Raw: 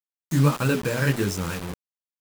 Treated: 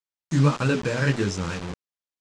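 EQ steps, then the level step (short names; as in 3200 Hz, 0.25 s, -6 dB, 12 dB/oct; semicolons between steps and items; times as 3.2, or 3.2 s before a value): LPF 7200 Hz 24 dB/oct; 0.0 dB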